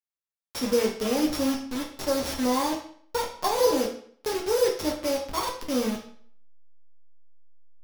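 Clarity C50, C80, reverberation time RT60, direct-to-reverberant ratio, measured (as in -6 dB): 7.0 dB, 11.0 dB, 0.55 s, -1.0 dB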